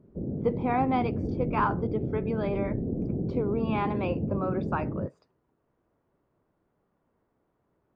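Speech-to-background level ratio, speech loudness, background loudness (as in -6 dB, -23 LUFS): 1.5 dB, -31.0 LUFS, -32.5 LUFS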